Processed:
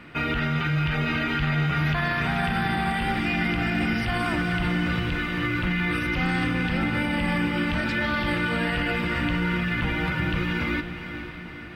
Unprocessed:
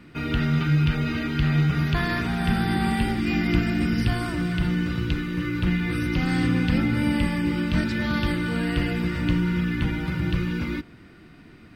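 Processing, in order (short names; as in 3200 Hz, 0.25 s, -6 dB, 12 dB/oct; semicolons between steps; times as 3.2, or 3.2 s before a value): band shelf 1300 Hz +8 dB 3 oct; limiter -17 dBFS, peak gain reduction 11 dB; diffused feedback echo 0.494 s, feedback 55%, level -10 dB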